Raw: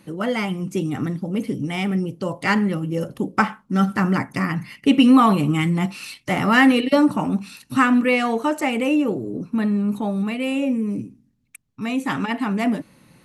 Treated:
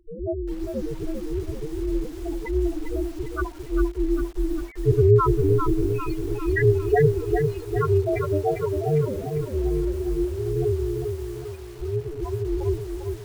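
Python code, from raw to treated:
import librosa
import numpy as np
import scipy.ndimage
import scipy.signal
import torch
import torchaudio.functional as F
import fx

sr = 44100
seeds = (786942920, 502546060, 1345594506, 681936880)

y = x * np.sin(2.0 * np.pi * 150.0 * np.arange(len(x)) / sr)
y = fx.spec_topn(y, sr, count=2)
y = fx.echo_crushed(y, sr, ms=399, feedback_pct=55, bits=8, wet_db=-5.0)
y = F.gain(torch.from_numpy(y), 5.0).numpy()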